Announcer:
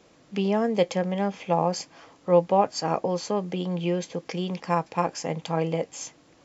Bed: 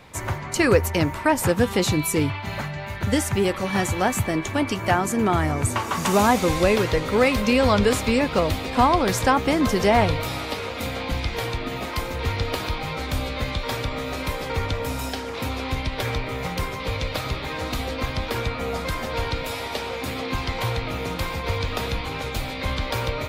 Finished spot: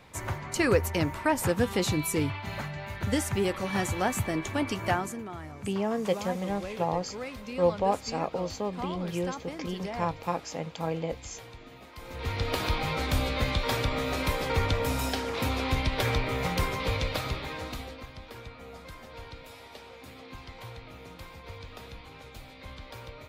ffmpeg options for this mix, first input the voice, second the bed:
-filter_complex "[0:a]adelay=5300,volume=0.531[s0];[1:a]volume=4.22,afade=t=out:st=4.89:d=0.35:silence=0.211349,afade=t=in:st=11.97:d=0.74:silence=0.11885,afade=t=out:st=16.76:d=1.3:silence=0.141254[s1];[s0][s1]amix=inputs=2:normalize=0"

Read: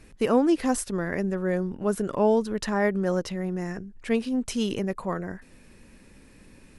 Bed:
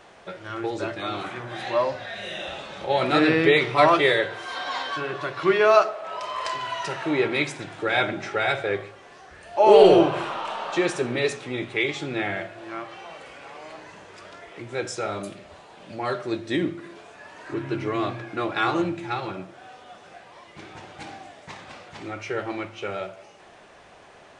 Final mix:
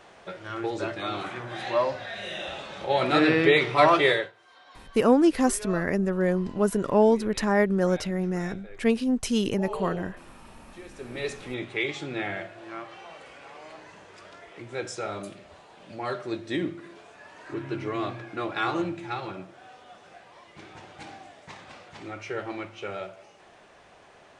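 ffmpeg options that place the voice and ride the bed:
-filter_complex "[0:a]adelay=4750,volume=1.26[s0];[1:a]volume=7.08,afade=t=out:st=4.11:d=0.21:silence=0.0891251,afade=t=in:st=10.91:d=0.55:silence=0.11885[s1];[s0][s1]amix=inputs=2:normalize=0"

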